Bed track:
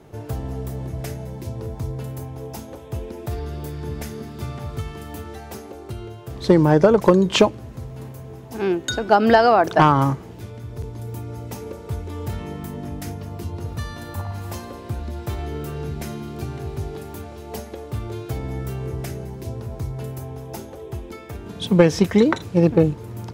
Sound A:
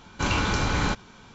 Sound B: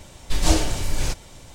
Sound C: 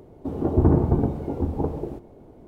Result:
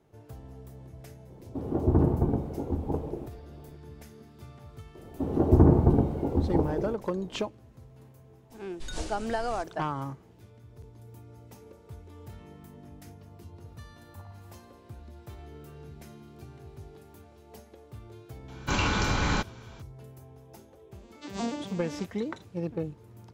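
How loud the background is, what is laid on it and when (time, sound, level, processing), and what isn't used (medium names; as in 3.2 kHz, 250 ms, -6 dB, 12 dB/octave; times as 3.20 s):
bed track -17 dB
1.30 s: add C -5 dB
4.95 s: add C -0.5 dB
8.50 s: add B -18 dB + careless resampling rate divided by 2×, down none, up filtered
18.48 s: add A -2 dB
20.91 s: add B -8.5 dB + vocoder on a broken chord minor triad, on G3, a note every 120 ms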